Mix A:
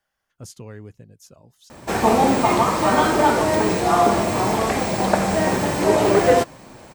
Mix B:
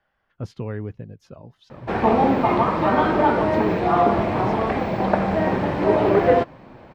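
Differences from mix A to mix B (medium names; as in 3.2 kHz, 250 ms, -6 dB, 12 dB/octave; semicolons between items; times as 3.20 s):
speech +9.0 dB; master: add distance through air 360 m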